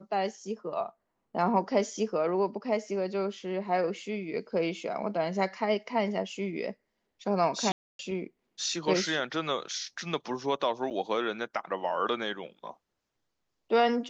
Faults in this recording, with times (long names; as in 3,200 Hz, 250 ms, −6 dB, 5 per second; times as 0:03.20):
0:07.72–0:07.99: drop-out 272 ms
0:10.90–0:10.91: drop-out 7.2 ms